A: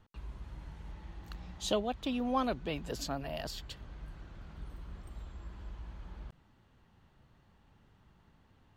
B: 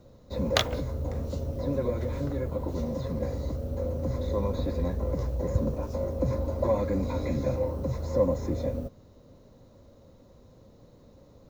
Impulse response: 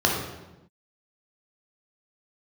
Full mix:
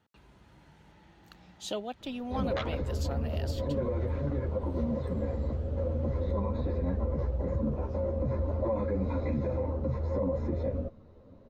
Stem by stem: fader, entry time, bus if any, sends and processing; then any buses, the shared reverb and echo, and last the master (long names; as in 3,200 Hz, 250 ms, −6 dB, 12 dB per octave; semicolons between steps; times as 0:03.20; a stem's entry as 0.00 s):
−2.5 dB, 0.00 s, no send, Bessel high-pass filter 160 Hz, order 2; notch filter 1,100 Hz, Q 8.7
+2.5 dB, 2.00 s, no send, low-pass filter 2,400 Hz 12 dB per octave; string-ensemble chorus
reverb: not used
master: brickwall limiter −22 dBFS, peak gain reduction 10.5 dB